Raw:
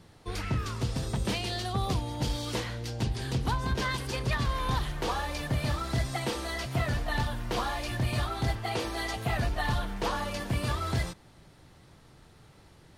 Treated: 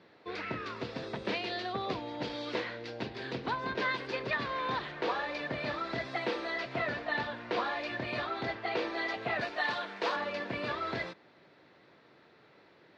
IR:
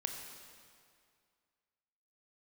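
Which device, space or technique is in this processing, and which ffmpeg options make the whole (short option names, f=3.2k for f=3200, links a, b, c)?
phone earpiece: -filter_complex "[0:a]highpass=350,equalizer=f=820:t=q:w=4:g=-6,equalizer=f=1.2k:t=q:w=4:g=-4,equalizer=f=3.1k:t=q:w=4:g=-7,lowpass=f=3.7k:w=0.5412,lowpass=f=3.7k:w=1.3066,asettb=1/sr,asplit=3[a][b][c];[a]atrim=end=9.414[d];[b]atrim=start=9.41:end=10.16,asetpts=PTS-STARTPTS,afade=t=in:d=0.004:c=qsin,afade=t=out:st=0.746:d=0.004:c=qsin,aemphasis=mode=production:type=bsi[e];[c]atrim=start=10.156[f];[d][e]acrossfade=d=0.004:c1=hsin:c2=qsin[g];[g][f]acrossfade=d=0.004:c1=qsin:c2=hsin,volume=2.5dB"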